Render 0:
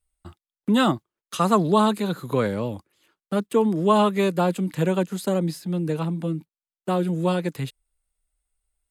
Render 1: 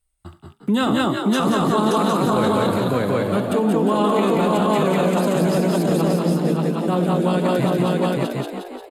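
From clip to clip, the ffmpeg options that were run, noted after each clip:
ffmpeg -i in.wav -filter_complex "[0:a]asplit=2[link_01][link_02];[link_02]aecho=0:1:71|89|195|575|762:0.211|0.112|0.668|0.708|0.668[link_03];[link_01][link_03]amix=inputs=2:normalize=0,alimiter=limit=-15.5dB:level=0:latency=1:release=13,asplit=2[link_04][link_05];[link_05]asplit=8[link_06][link_07][link_08][link_09][link_10][link_11][link_12][link_13];[link_06]adelay=176,afreqshift=57,volume=-7dB[link_14];[link_07]adelay=352,afreqshift=114,volume=-11.2dB[link_15];[link_08]adelay=528,afreqshift=171,volume=-15.3dB[link_16];[link_09]adelay=704,afreqshift=228,volume=-19.5dB[link_17];[link_10]adelay=880,afreqshift=285,volume=-23.6dB[link_18];[link_11]adelay=1056,afreqshift=342,volume=-27.8dB[link_19];[link_12]adelay=1232,afreqshift=399,volume=-31.9dB[link_20];[link_13]adelay=1408,afreqshift=456,volume=-36.1dB[link_21];[link_14][link_15][link_16][link_17][link_18][link_19][link_20][link_21]amix=inputs=8:normalize=0[link_22];[link_04][link_22]amix=inputs=2:normalize=0,volume=3.5dB" out.wav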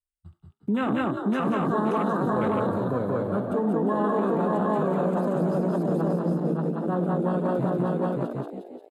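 ffmpeg -i in.wav -af "afwtdn=0.0501,volume=-6dB" out.wav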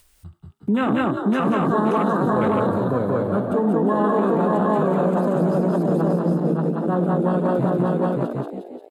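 ffmpeg -i in.wav -af "acompressor=mode=upward:threshold=-40dB:ratio=2.5,volume=5dB" out.wav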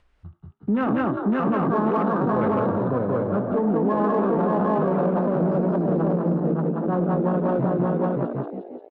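ffmpeg -i in.wav -filter_complex "[0:a]lowpass=1900,asplit=2[link_01][link_02];[link_02]asoftclip=type=tanh:threshold=-23.5dB,volume=-11.5dB[link_03];[link_01][link_03]amix=inputs=2:normalize=0,volume=-3dB" out.wav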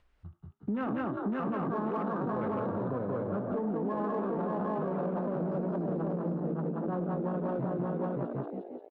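ffmpeg -i in.wav -af "acompressor=threshold=-25dB:ratio=3,volume=-5.5dB" out.wav

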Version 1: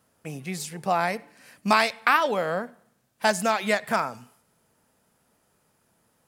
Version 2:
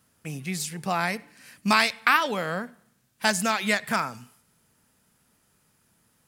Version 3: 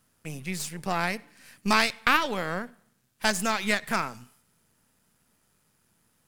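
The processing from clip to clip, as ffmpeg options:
ffmpeg -i in.wav -af "equalizer=frequency=610:width_type=o:width=1.8:gain=-9,volume=3.5dB" out.wav
ffmpeg -i in.wav -af "aeval=exprs='if(lt(val(0),0),0.447*val(0),val(0))':channel_layout=same" out.wav

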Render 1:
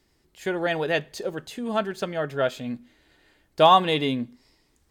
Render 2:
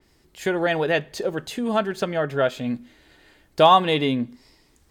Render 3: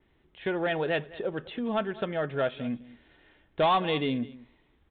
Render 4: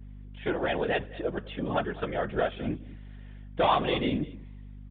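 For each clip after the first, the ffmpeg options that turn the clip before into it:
ffmpeg -i in.wav -filter_complex "[0:a]asplit=2[link_01][link_02];[link_02]acompressor=threshold=-29dB:ratio=6,volume=0.5dB[link_03];[link_01][link_03]amix=inputs=2:normalize=0,adynamicequalizer=threshold=0.0126:dfrequency=3300:dqfactor=0.7:tfrequency=3300:tqfactor=0.7:attack=5:release=100:ratio=0.375:range=3:mode=cutabove:tftype=highshelf" out.wav
ffmpeg -i in.wav -af "aecho=1:1:206:0.0944,aresample=8000,asoftclip=type=tanh:threshold=-12.5dB,aresample=44100,volume=-5.5dB" out.wav
ffmpeg -i in.wav -af "aresample=8000,aresample=44100,afftfilt=real='hypot(re,im)*cos(2*PI*random(0))':imag='hypot(re,im)*sin(2*PI*random(1))':win_size=512:overlap=0.75,aeval=exprs='val(0)+0.00355*(sin(2*PI*50*n/s)+sin(2*PI*2*50*n/s)/2+sin(2*PI*3*50*n/s)/3+sin(2*PI*4*50*n/s)/4+sin(2*PI*5*50*n/s)/5)':channel_layout=same,volume=6dB" out.wav

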